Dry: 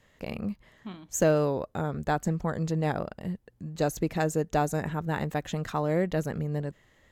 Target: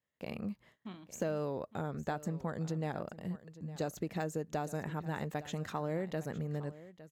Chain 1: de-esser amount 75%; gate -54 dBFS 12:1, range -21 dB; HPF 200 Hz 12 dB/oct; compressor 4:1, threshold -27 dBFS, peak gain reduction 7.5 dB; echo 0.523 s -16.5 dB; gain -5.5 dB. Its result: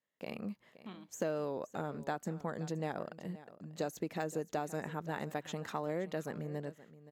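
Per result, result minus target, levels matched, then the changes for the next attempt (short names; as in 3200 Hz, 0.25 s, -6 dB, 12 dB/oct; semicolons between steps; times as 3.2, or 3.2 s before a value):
echo 0.337 s early; 125 Hz band -3.5 dB
change: echo 0.86 s -16.5 dB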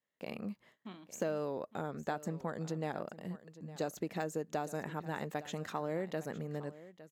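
125 Hz band -3.5 dB
change: HPF 95 Hz 12 dB/oct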